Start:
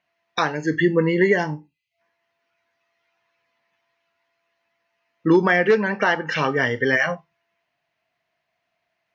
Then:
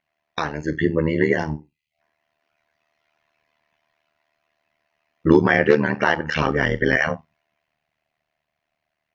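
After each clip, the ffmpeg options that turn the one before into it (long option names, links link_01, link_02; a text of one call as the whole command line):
ffmpeg -i in.wav -af "lowshelf=frequency=120:gain=12,dynaudnorm=framelen=330:gausssize=11:maxgain=11.5dB,tremolo=f=76:d=0.947" out.wav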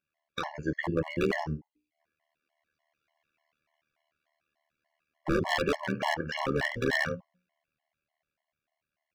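ffmpeg -i in.wav -af "aeval=exprs='0.266*(abs(mod(val(0)/0.266+3,4)-2)-1)':channel_layout=same,bandreject=frequency=60:width_type=h:width=6,bandreject=frequency=120:width_type=h:width=6,bandreject=frequency=180:width_type=h:width=6,bandreject=frequency=240:width_type=h:width=6,bandreject=frequency=300:width_type=h:width=6,bandreject=frequency=360:width_type=h:width=6,bandreject=frequency=420:width_type=h:width=6,bandreject=frequency=480:width_type=h:width=6,bandreject=frequency=540:width_type=h:width=6,afftfilt=real='re*gt(sin(2*PI*3.4*pts/sr)*(1-2*mod(floor(b*sr/1024/560),2)),0)':imag='im*gt(sin(2*PI*3.4*pts/sr)*(1-2*mod(floor(b*sr/1024/560),2)),0)':win_size=1024:overlap=0.75,volume=-5.5dB" out.wav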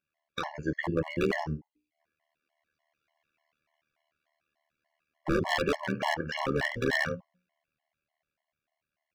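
ffmpeg -i in.wav -af anull out.wav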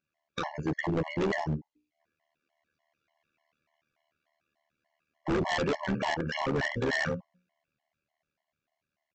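ffmpeg -i in.wav -af "equalizer=frequency=200:width=0.44:gain=5,aresample=16000,asoftclip=type=hard:threshold=-24.5dB,aresample=44100" out.wav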